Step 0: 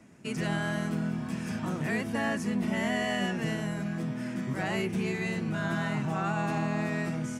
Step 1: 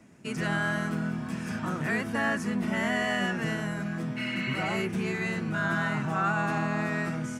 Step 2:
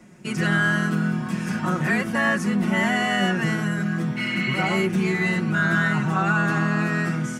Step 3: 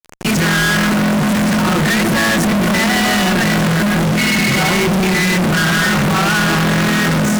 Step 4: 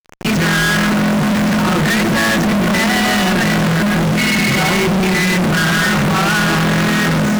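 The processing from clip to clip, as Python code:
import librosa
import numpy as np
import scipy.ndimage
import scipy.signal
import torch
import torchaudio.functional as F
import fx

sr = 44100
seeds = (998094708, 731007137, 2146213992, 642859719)

y1 = fx.spec_repair(x, sr, seeds[0], start_s=4.2, length_s=0.55, low_hz=1500.0, high_hz=4500.0, source='after')
y1 = fx.dynamic_eq(y1, sr, hz=1400.0, q=1.8, threshold_db=-50.0, ratio=4.0, max_db=8)
y2 = y1 + 0.61 * np.pad(y1, (int(5.5 * sr / 1000.0), 0))[:len(y1)]
y2 = F.gain(torch.from_numpy(y2), 5.0).numpy()
y3 = fx.echo_wet_lowpass(y2, sr, ms=148, feedback_pct=83, hz=610.0, wet_db=-10.0)
y3 = fx.fuzz(y3, sr, gain_db=47.0, gate_db=-41.0)
y4 = scipy.ndimage.median_filter(y3, 5, mode='constant')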